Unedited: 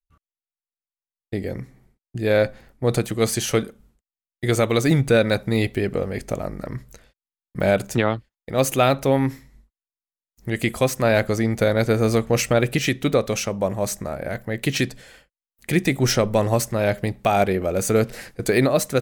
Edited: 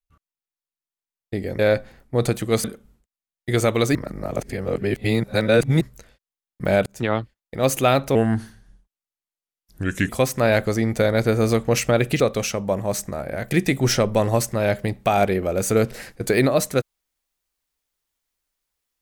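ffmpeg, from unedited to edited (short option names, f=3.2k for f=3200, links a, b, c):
-filter_complex "[0:a]asplit=10[a][b][c][d][e][f][g][h][i][j];[a]atrim=end=1.592[k];[b]atrim=start=2.278:end=3.332[l];[c]atrim=start=3.588:end=4.902[m];[d]atrim=start=4.898:end=6.762,asetpts=PTS-STARTPTS,areverse[n];[e]atrim=start=6.758:end=7.81,asetpts=PTS-STARTPTS,afade=t=out:st=1.048:d=0.004:c=hsin[o];[f]atrim=start=7.81:end=9.104,asetpts=PTS-STARTPTS,afade=t=in:d=0.29[p];[g]atrim=start=9.1:end=10.71,asetpts=PTS-STARTPTS,asetrate=36603,aresample=44100,atrim=end_sample=85543,asetpts=PTS-STARTPTS[q];[h]atrim=start=10.706:end=12.822[r];[i]atrim=start=13.128:end=14.442[s];[j]atrim=start=15.698[t];[k][l]acrossfade=d=0.004:c1=hsin:c2=hsin[u];[u][m]acrossfade=d=0.004:c1=hsin:c2=hsin[v];[v][n]acrossfade=d=0.004:c1=hsin:c2=hsin[w];[o][p]concat=n=2:v=0:a=1[x];[w][x]acrossfade=d=0.004:c1=hsin:c2=hsin[y];[y][q]acrossfade=d=0.004:c1=hsin:c2=hsin[z];[z][r]acrossfade=d=0.004:c1=hsin:c2=hsin[aa];[aa][s]acrossfade=d=0.004:c1=hsin:c2=hsin[ab];[ab][t]acrossfade=d=0.004:c1=hsin:c2=hsin"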